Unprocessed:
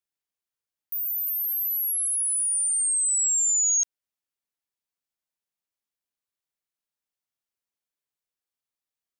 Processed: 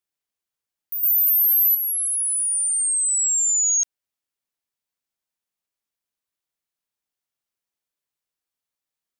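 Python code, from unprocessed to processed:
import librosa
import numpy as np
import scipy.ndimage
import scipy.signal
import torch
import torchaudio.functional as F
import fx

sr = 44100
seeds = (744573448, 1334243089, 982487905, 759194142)

y = fx.high_shelf(x, sr, hz=4700.0, db=8.0, at=(1.03, 1.75))
y = y * librosa.db_to_amplitude(2.5)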